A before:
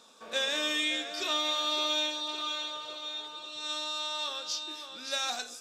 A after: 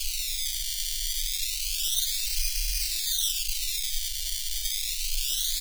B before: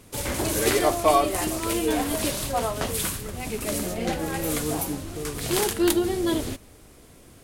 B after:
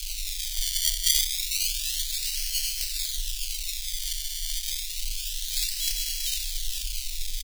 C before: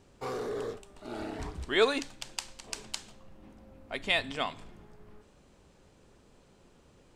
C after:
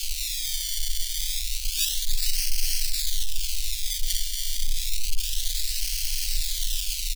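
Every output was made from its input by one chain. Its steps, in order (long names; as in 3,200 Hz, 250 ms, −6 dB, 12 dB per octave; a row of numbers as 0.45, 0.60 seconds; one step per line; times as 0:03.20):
linear delta modulator 64 kbit/s, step −21.5 dBFS
low-pass filter 9,400 Hz 24 dB per octave
parametric band 280 Hz −3 dB
single-tap delay 458 ms −7 dB
sample-and-hold swept by an LFO 23×, swing 100% 0.29 Hz
inverse Chebyshev band-stop filter 100–1,100 Hz, stop band 60 dB
loudness normalisation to −27 LKFS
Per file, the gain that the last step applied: +9.0, +7.5, +10.5 decibels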